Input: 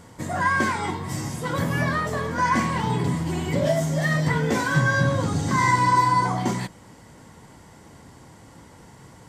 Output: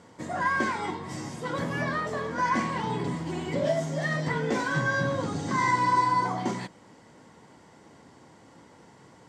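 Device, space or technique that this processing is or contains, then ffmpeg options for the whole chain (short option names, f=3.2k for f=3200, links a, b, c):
filter by subtraction: -filter_complex "[0:a]asplit=2[a][b];[b]lowpass=330,volume=-1[c];[a][c]amix=inputs=2:normalize=0,lowpass=6.9k,volume=-5dB"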